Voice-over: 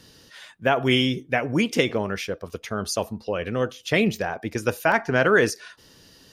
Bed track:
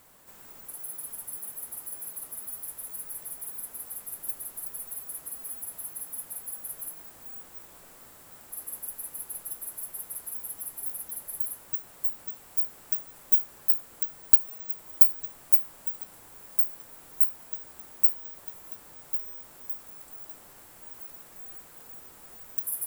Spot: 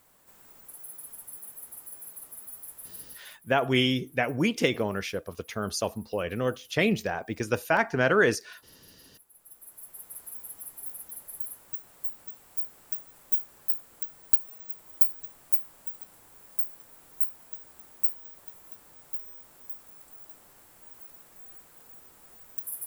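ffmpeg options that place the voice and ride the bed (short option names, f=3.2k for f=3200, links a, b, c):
-filter_complex "[0:a]adelay=2850,volume=-3.5dB[a];[1:a]volume=11dB,afade=t=out:st=2.99:d=0.4:silence=0.16788,afade=t=in:st=9.32:d=0.88:silence=0.158489[b];[a][b]amix=inputs=2:normalize=0"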